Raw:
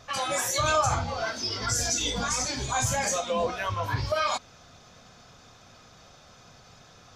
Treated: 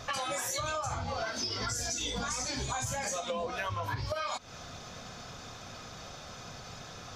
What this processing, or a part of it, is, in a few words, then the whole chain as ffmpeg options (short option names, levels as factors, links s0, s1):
serial compression, leveller first: -af "acompressor=threshold=0.0251:ratio=2,acompressor=threshold=0.0112:ratio=6,volume=2.24"